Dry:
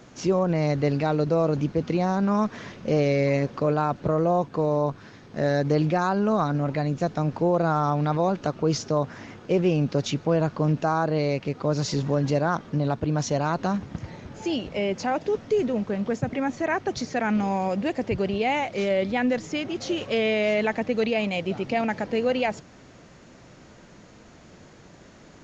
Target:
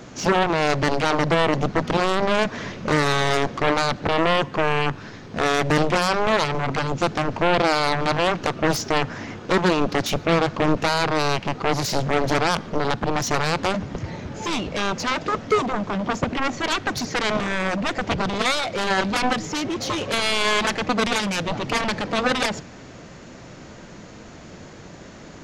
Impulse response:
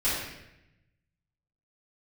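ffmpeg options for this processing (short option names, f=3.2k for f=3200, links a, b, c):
-filter_complex "[0:a]aeval=exprs='0.266*(cos(1*acos(clip(val(0)/0.266,-1,1)))-cos(1*PI/2))+0.133*(cos(7*acos(clip(val(0)/0.266,-1,1)))-cos(7*PI/2))':c=same,asplit=2[a][b];[1:a]atrim=start_sample=2205[c];[b][c]afir=irnorm=-1:irlink=0,volume=-33dB[d];[a][d]amix=inputs=2:normalize=0"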